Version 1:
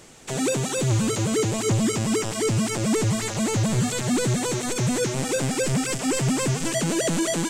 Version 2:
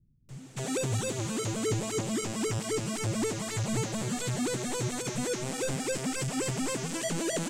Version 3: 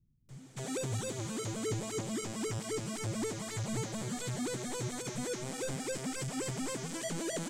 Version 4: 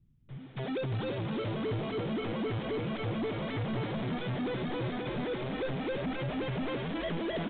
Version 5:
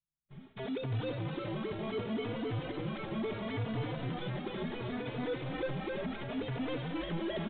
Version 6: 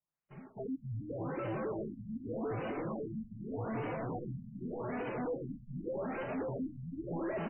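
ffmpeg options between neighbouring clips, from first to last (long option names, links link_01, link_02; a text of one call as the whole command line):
ffmpeg -i in.wav -filter_complex "[0:a]acrossover=split=170[link_01][link_02];[link_02]adelay=290[link_03];[link_01][link_03]amix=inputs=2:normalize=0,volume=-7dB" out.wav
ffmpeg -i in.wav -af "bandreject=frequency=2700:width=15,volume=-5.5dB" out.wav
ffmpeg -i in.wav -filter_complex "[0:a]asplit=8[link_01][link_02][link_03][link_04][link_05][link_06][link_07][link_08];[link_02]adelay=339,afreqshift=43,volume=-7.5dB[link_09];[link_03]adelay=678,afreqshift=86,volume=-12.4dB[link_10];[link_04]adelay=1017,afreqshift=129,volume=-17.3dB[link_11];[link_05]adelay=1356,afreqshift=172,volume=-22.1dB[link_12];[link_06]adelay=1695,afreqshift=215,volume=-27dB[link_13];[link_07]adelay=2034,afreqshift=258,volume=-31.9dB[link_14];[link_08]adelay=2373,afreqshift=301,volume=-36.8dB[link_15];[link_01][link_09][link_10][link_11][link_12][link_13][link_14][link_15]amix=inputs=8:normalize=0,aresample=8000,asoftclip=type=tanh:threshold=-34.5dB,aresample=44100,volume=6dB" out.wav
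ffmpeg -i in.wav -filter_complex "[0:a]agate=range=-33dB:threshold=-44dB:ratio=3:detection=peak,asplit=2[link_01][link_02];[link_02]adelay=3.4,afreqshift=0.71[link_03];[link_01][link_03]amix=inputs=2:normalize=1" out.wav
ffmpeg -i in.wav -filter_complex "[0:a]asplit=2[link_01][link_02];[link_02]adelay=553.9,volume=-8dB,highshelf=frequency=4000:gain=-12.5[link_03];[link_01][link_03]amix=inputs=2:normalize=0,asplit=2[link_04][link_05];[link_05]highpass=frequency=720:poles=1,volume=20dB,asoftclip=type=tanh:threshold=-24dB[link_06];[link_04][link_06]amix=inputs=2:normalize=0,lowpass=frequency=1100:poles=1,volume=-6dB,afftfilt=real='re*lt(b*sr/1024,230*pow(3100/230,0.5+0.5*sin(2*PI*0.84*pts/sr)))':imag='im*lt(b*sr/1024,230*pow(3100/230,0.5+0.5*sin(2*PI*0.84*pts/sr)))':win_size=1024:overlap=0.75,volume=-3.5dB" out.wav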